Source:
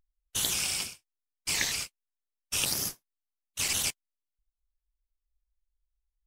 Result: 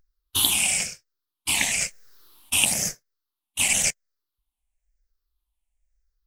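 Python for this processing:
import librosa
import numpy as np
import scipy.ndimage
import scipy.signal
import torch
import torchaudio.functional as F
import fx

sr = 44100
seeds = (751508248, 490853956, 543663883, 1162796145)

y = fx.spec_ripple(x, sr, per_octave=0.56, drift_hz=-0.99, depth_db=14)
y = fx.env_flatten(y, sr, amount_pct=50, at=(1.81, 2.59))
y = y * librosa.db_to_amplitude(4.5)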